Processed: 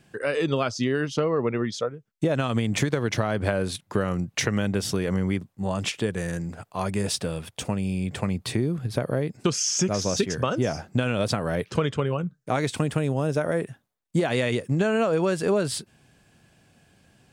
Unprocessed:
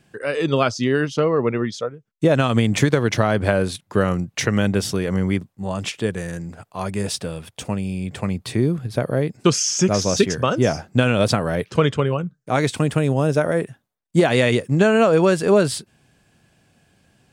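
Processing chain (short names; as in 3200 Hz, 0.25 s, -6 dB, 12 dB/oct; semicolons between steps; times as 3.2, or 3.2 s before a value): compressor 3:1, threshold -22 dBFS, peak gain reduction 9 dB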